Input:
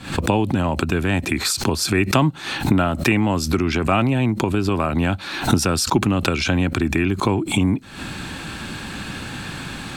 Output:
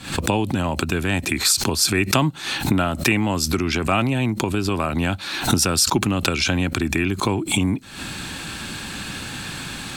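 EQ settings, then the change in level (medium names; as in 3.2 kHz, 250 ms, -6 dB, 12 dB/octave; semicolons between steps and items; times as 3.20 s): treble shelf 3 kHz +8.5 dB; -2.5 dB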